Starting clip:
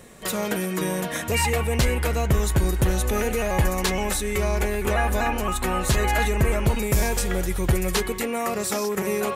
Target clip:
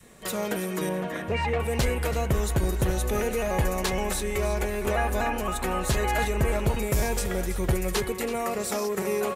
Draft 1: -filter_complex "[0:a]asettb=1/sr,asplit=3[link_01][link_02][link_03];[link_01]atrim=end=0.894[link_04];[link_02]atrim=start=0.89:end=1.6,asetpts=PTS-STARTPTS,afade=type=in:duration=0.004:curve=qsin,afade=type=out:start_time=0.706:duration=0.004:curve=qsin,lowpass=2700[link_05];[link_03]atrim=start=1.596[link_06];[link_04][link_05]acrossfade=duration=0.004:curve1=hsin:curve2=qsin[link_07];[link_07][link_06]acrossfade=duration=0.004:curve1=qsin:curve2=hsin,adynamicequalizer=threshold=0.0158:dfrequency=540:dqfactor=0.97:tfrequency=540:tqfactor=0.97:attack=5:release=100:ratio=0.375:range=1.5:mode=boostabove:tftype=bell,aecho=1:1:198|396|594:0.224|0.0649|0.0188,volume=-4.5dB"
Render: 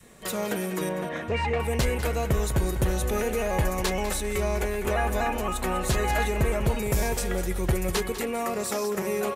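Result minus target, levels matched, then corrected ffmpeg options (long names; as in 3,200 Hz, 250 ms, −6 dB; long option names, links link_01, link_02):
echo 131 ms early
-filter_complex "[0:a]asettb=1/sr,asplit=3[link_01][link_02][link_03];[link_01]atrim=end=0.894[link_04];[link_02]atrim=start=0.89:end=1.6,asetpts=PTS-STARTPTS,afade=type=in:duration=0.004:curve=qsin,afade=type=out:start_time=0.706:duration=0.004:curve=qsin,lowpass=2700[link_05];[link_03]atrim=start=1.596[link_06];[link_04][link_05]acrossfade=duration=0.004:curve1=hsin:curve2=qsin[link_07];[link_07][link_06]acrossfade=duration=0.004:curve1=qsin:curve2=hsin,adynamicequalizer=threshold=0.0158:dfrequency=540:dqfactor=0.97:tfrequency=540:tqfactor=0.97:attack=5:release=100:ratio=0.375:range=1.5:mode=boostabove:tftype=bell,aecho=1:1:329|658|987:0.224|0.0649|0.0188,volume=-4.5dB"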